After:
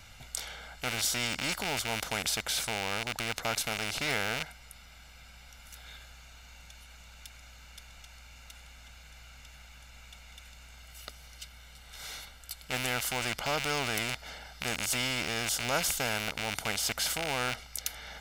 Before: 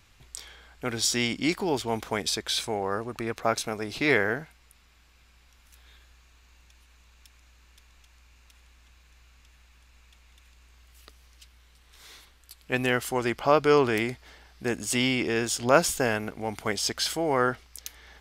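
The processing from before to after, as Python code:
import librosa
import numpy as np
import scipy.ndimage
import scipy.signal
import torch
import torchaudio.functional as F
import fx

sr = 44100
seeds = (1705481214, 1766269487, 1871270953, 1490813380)

y = fx.rattle_buzz(x, sr, strikes_db=-40.0, level_db=-18.0)
y = y + 0.67 * np.pad(y, (int(1.4 * sr / 1000.0), 0))[:len(y)]
y = fx.spectral_comp(y, sr, ratio=2.0)
y = y * librosa.db_to_amplitude(-7.0)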